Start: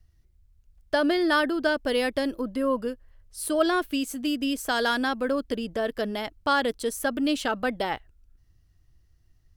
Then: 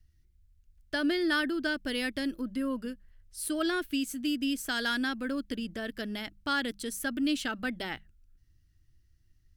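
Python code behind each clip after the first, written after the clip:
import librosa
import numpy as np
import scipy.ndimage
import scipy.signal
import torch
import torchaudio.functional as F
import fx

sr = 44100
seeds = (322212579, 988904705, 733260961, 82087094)

y = fx.band_shelf(x, sr, hz=700.0, db=-10.0, octaves=1.7)
y = fx.hum_notches(y, sr, base_hz=50, count=4)
y = F.gain(torch.from_numpy(y), -3.0).numpy()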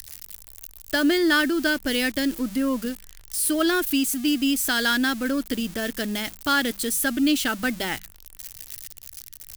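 y = x + 0.5 * 10.0 ** (-32.5 / 20.0) * np.diff(np.sign(x), prepend=np.sign(x[:1]))
y = F.gain(torch.from_numpy(y), 8.0).numpy()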